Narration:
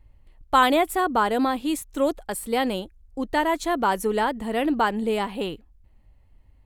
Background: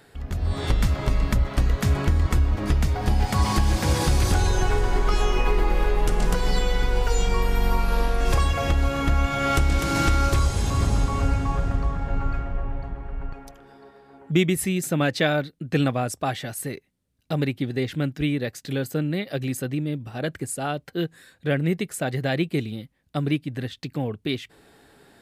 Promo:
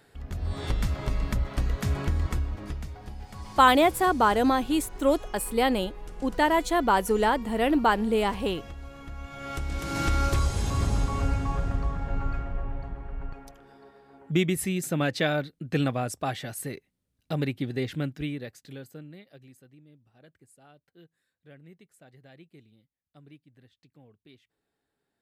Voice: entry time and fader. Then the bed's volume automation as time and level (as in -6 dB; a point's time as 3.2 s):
3.05 s, 0.0 dB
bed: 2.24 s -6 dB
3.16 s -20 dB
9.09 s -20 dB
10.17 s -4 dB
17.96 s -4 dB
19.69 s -28 dB